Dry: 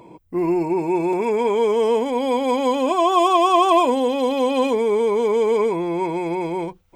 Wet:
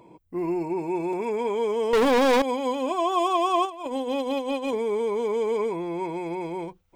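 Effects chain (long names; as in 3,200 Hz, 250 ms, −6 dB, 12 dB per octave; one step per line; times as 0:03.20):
0:01.93–0:02.42: leveller curve on the samples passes 5
0:03.65–0:04.73: compressor whose output falls as the input rises −21 dBFS, ratio −0.5
level −7 dB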